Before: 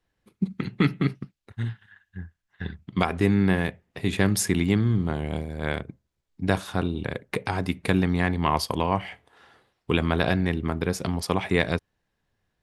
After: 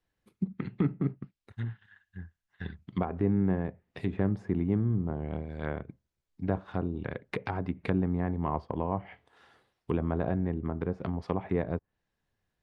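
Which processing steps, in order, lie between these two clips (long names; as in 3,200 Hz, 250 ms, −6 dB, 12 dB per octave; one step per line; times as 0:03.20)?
treble cut that deepens with the level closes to 880 Hz, closed at −22 dBFS
level −5.5 dB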